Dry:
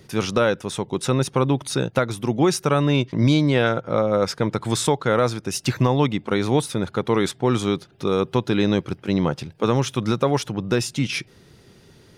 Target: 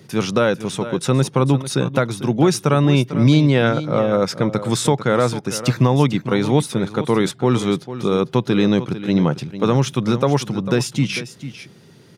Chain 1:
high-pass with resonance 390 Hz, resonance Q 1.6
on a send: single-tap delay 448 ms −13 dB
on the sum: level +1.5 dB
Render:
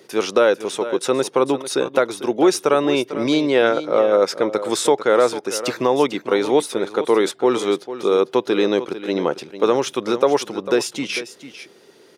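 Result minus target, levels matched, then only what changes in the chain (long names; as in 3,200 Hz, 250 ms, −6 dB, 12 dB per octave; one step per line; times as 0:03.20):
125 Hz band −19.0 dB
change: high-pass with resonance 140 Hz, resonance Q 1.6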